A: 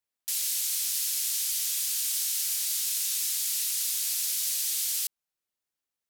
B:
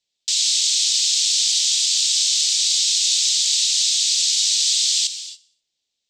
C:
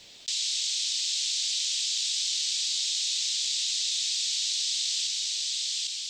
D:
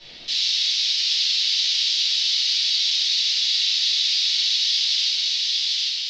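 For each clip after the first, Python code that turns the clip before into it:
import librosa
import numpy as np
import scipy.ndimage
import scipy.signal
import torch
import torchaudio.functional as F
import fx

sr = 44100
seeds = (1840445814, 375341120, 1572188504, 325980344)

y1 = fx.curve_eq(x, sr, hz=(600.0, 1300.0, 3700.0, 7900.0, 11000.0), db=(0, -12, 14, 5, -28))
y1 = fx.echo_feedback(y1, sr, ms=62, feedback_pct=57, wet_db=-20.5)
y1 = fx.rev_gated(y1, sr, seeds[0], gate_ms=310, shape='flat', drr_db=9.0)
y1 = y1 * librosa.db_to_amplitude(5.5)
y2 = fx.high_shelf(y1, sr, hz=4200.0, db=-10.0)
y2 = y2 + 10.0 ** (-5.0 / 20.0) * np.pad(y2, (int(800 * sr / 1000.0), 0))[:len(y2)]
y2 = fx.env_flatten(y2, sr, amount_pct=70)
y2 = y2 * librosa.db_to_amplitude(-6.5)
y3 = scipy.signal.sosfilt(scipy.signal.butter(6, 5200.0, 'lowpass', fs=sr, output='sos'), y2)
y3 = fx.room_shoebox(y3, sr, seeds[1], volume_m3=110.0, walls='mixed', distance_m=2.7)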